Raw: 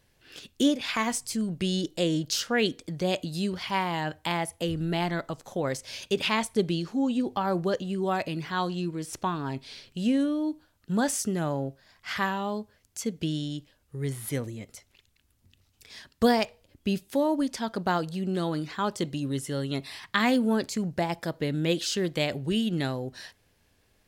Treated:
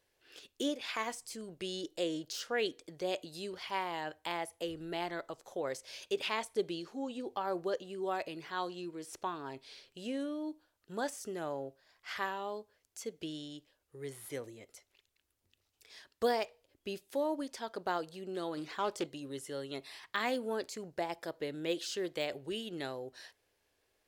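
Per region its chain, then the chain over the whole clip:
0:18.57–0:19.07: leveller curve on the samples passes 1 + highs frequency-modulated by the lows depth 0.15 ms
whole clip: de-essing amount 60%; low shelf with overshoot 280 Hz −9.5 dB, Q 1.5; level −8.5 dB

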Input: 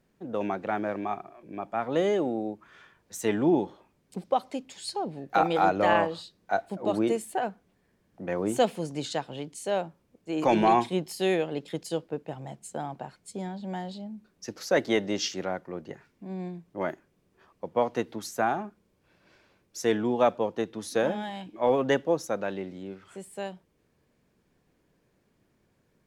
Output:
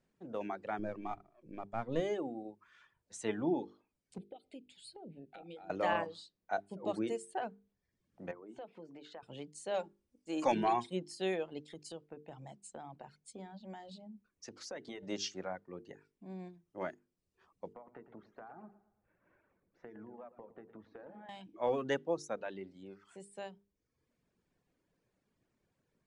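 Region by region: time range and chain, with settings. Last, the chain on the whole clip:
0:00.79–0:02.00: gain on one half-wave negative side −3 dB + low-shelf EQ 190 Hz +10.5 dB
0:04.18–0:05.70: parametric band 1,800 Hz −11 dB 0.47 octaves + downward compressor 8 to 1, threshold −33 dBFS + phaser with its sweep stopped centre 2,600 Hz, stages 4
0:08.31–0:09.23: band-pass filter 240–2,200 Hz + downward compressor 4 to 1, threshold −37 dBFS
0:09.74–0:10.52: high-shelf EQ 4,700 Hz +9.5 dB + comb filter 3.6 ms, depth 48%
0:11.71–0:15.03: downward compressor 4 to 1, threshold −33 dBFS + mains-hum notches 60/120/180 Hz
0:17.73–0:21.29: low-pass filter 1,900 Hz 24 dB per octave + downward compressor 16 to 1, threshold −37 dBFS + repeating echo 112 ms, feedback 48%, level −8 dB
whole clip: reverb reduction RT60 0.81 s; Butterworth low-pass 10,000 Hz 72 dB per octave; mains-hum notches 50/100/150/200/250/300/350/400/450 Hz; level −8.5 dB

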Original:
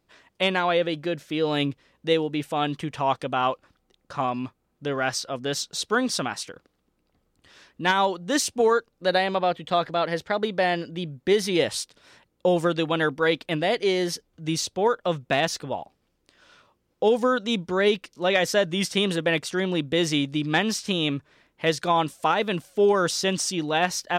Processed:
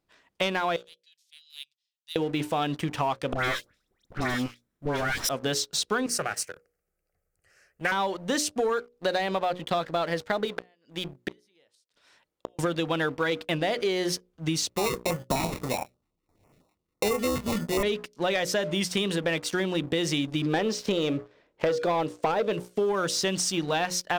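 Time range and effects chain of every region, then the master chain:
0:00.76–0:02.16: inverse Chebyshev high-pass filter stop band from 880 Hz, stop band 70 dB + spectral tilt −3.5 dB per octave
0:03.33–0:05.29: lower of the sound and its delayed copy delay 0.54 ms + high-shelf EQ 5,700 Hz +5 dB + all-pass dispersion highs, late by 114 ms, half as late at 1,600 Hz
0:06.06–0:07.92: high-shelf EQ 6,300 Hz +8 dB + phaser with its sweep stopped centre 970 Hz, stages 6 + highs frequency-modulated by the lows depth 0.19 ms
0:10.45–0:12.59: low-shelf EQ 360 Hz −9.5 dB + gate with flip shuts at −21 dBFS, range −32 dB
0:14.69–0:17.83: double-tracking delay 24 ms −9 dB + sample-rate reduction 1,600 Hz + notch on a step sequencer 12 Hz 520–3,900 Hz
0:20.46–0:22.53: low-pass filter 6,600 Hz + parametric band 490 Hz +12.5 dB 1.1 octaves
whole clip: mains-hum notches 60/120/180/240/300/360/420/480/540/600 Hz; leveller curve on the samples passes 2; downward compressor, threshold −21 dBFS; level −3 dB

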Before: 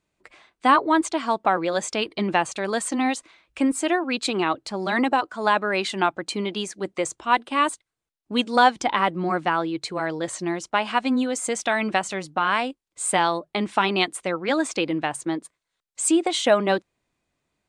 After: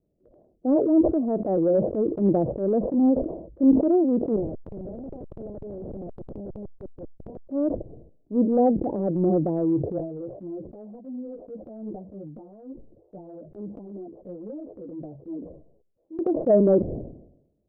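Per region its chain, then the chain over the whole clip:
0:04.36–0:07.49: low-pass filter 3,800 Hz + comparator with hysteresis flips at −30 dBFS + every bin compressed towards the loudest bin 2 to 1
0:09.98–0:16.19: downward compressor 12 to 1, threshold −33 dBFS + string-ensemble chorus
whole clip: Butterworth low-pass 610 Hz 48 dB per octave; transient designer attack −9 dB, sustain +3 dB; level that may fall only so fast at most 72 dB per second; level +6.5 dB

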